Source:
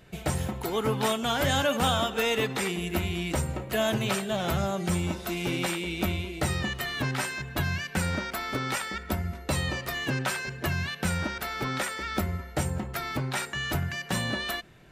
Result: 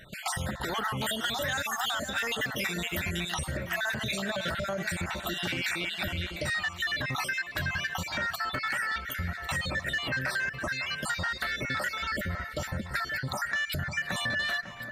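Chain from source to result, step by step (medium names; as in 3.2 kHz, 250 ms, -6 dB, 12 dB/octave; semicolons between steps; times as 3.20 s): random holes in the spectrogram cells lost 49%; small resonant body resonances 600/1900 Hz, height 9 dB; peak limiter -23.5 dBFS, peak gain reduction 10.5 dB; fifteen-band graphic EQ 400 Hz -5 dB, 1.6 kHz +11 dB, 4 kHz +6 dB, 10 kHz -3 dB; saturation -18.5 dBFS, distortion -23 dB; treble shelf 5.3 kHz +6 dB, from 0.97 s +11 dB, from 3.51 s +2.5 dB; echo whose repeats swap between lows and highs 549 ms, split 2.2 kHz, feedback 53%, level -12 dB; compression, threshold -29 dBFS, peak gain reduction 6 dB; trim +1.5 dB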